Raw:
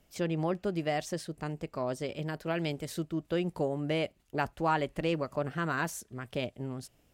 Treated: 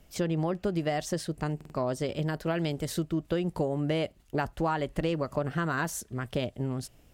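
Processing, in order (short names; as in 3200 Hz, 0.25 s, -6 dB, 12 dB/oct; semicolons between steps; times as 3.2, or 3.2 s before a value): low shelf 87 Hz +7.5 dB; compressor, threshold -30 dBFS, peak gain reduction 7.5 dB; dynamic EQ 2400 Hz, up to -5 dB, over -59 dBFS, Q 5; stuck buffer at 1.56, samples 2048, times 3; gain +5.5 dB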